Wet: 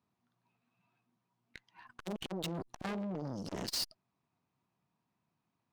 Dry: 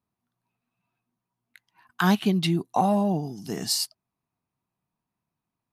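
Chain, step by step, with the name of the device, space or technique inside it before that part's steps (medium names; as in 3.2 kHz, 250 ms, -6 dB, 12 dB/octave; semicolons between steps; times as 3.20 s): valve radio (band-pass 92–5500 Hz; valve stage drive 38 dB, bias 0.7; transformer saturation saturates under 540 Hz); trim +6.5 dB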